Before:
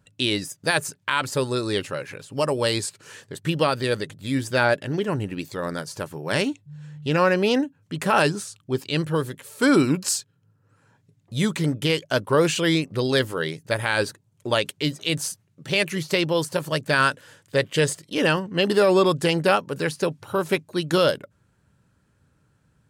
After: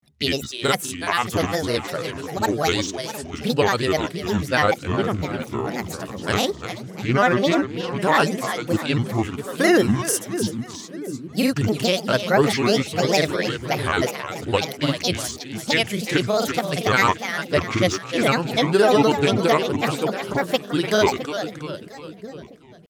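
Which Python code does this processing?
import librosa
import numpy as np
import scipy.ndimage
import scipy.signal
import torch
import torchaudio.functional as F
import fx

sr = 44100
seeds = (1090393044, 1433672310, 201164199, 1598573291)

y = fx.echo_split(x, sr, split_hz=370.0, low_ms=663, high_ms=333, feedback_pct=52, wet_db=-9.0)
y = fx.granulator(y, sr, seeds[0], grain_ms=100.0, per_s=20.0, spray_ms=33.0, spread_st=7)
y = y * librosa.db_to_amplitude(2.5)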